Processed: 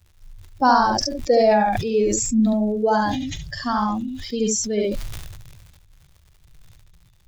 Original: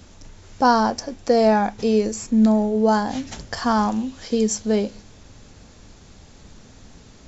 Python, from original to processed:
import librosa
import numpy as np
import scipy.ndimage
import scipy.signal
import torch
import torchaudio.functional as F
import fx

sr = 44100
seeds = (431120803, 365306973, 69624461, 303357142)

p1 = fx.bin_expand(x, sr, power=2.0)
p2 = fx.dmg_crackle(p1, sr, seeds[0], per_s=120.0, level_db=-48.0)
p3 = p2 + fx.room_early_taps(p2, sr, ms=(43, 71), db=(-13.0, -4.0), dry=0)
p4 = fx.sustainer(p3, sr, db_per_s=32.0)
y = p4 * 10.0 ** (1.5 / 20.0)